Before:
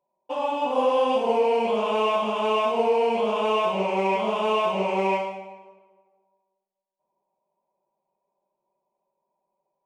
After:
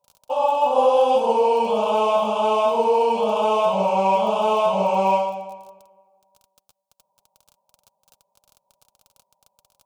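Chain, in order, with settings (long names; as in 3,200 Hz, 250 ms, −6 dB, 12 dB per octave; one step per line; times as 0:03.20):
surface crackle 23 per second −38 dBFS
phaser with its sweep stopped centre 780 Hz, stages 4
notch comb filter 350 Hz
level +8 dB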